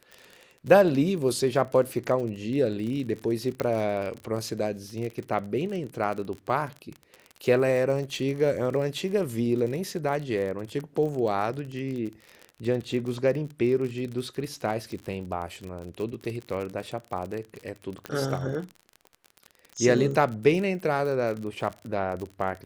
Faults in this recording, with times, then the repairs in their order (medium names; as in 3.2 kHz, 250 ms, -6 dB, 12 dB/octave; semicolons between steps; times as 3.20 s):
crackle 42 per s -32 dBFS
3.60 s: pop -15 dBFS
18.06 s: pop -18 dBFS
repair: de-click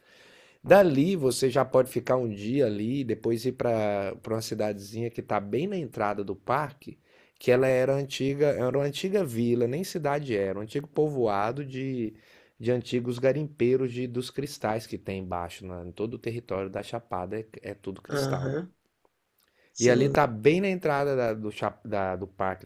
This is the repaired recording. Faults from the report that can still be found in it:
nothing left